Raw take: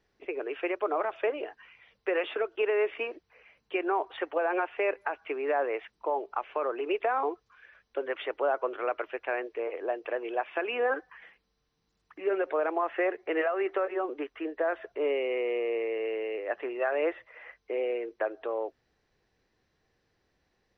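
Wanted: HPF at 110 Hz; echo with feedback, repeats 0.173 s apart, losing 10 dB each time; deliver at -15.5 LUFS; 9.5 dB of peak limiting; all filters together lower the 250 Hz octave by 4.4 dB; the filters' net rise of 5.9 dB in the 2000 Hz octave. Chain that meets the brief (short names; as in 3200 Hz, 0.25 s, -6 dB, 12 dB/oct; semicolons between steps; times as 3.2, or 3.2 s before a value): HPF 110 Hz; bell 250 Hz -8.5 dB; bell 2000 Hz +7.5 dB; limiter -23.5 dBFS; feedback echo 0.173 s, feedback 32%, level -10 dB; gain +18.5 dB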